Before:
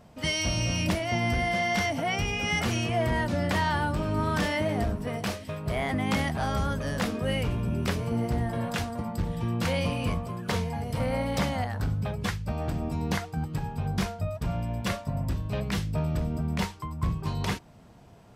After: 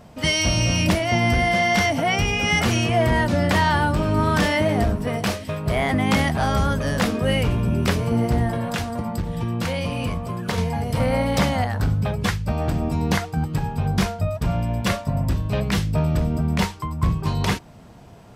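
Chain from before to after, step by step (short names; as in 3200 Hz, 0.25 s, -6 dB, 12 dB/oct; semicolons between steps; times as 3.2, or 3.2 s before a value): 8.51–10.58 compressor, threshold -29 dBFS, peak gain reduction 6.5 dB; gain +7.5 dB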